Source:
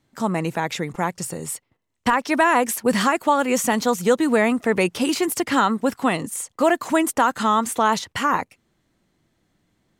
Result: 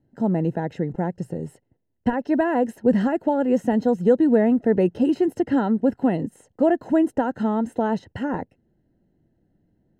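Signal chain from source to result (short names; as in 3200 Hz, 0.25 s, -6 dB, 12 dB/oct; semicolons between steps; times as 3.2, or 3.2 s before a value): running mean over 38 samples; gain +3.5 dB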